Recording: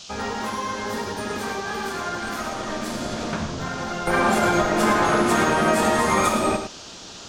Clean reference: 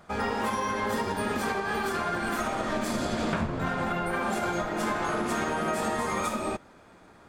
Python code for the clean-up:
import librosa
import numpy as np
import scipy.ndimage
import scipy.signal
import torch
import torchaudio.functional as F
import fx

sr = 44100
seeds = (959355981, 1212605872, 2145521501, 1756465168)

y = fx.noise_reduce(x, sr, print_start_s=6.68, print_end_s=7.18, reduce_db=20.0)
y = fx.fix_echo_inverse(y, sr, delay_ms=106, level_db=-8.5)
y = fx.gain(y, sr, db=fx.steps((0.0, 0.0), (4.07, -9.0)))